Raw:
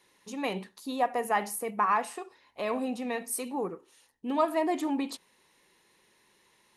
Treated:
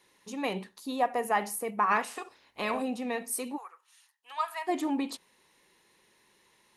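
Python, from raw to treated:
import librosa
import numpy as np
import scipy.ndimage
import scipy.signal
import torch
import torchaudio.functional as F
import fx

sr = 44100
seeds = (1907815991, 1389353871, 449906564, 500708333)

y = fx.spec_clip(x, sr, under_db=13, at=(1.9, 2.81), fade=0.02)
y = fx.highpass(y, sr, hz=1000.0, slope=24, at=(3.56, 4.67), fade=0.02)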